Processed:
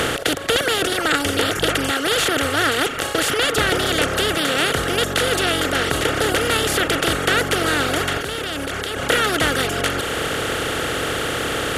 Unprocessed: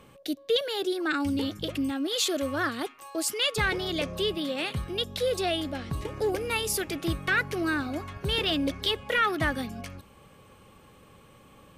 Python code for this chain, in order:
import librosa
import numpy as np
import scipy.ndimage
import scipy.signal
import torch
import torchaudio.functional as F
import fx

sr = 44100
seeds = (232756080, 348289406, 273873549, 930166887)

y = fx.bin_compress(x, sr, power=0.2)
y = fx.dereverb_blind(y, sr, rt60_s=0.9)
y = fx.level_steps(y, sr, step_db=13, at=(8.18, 8.98))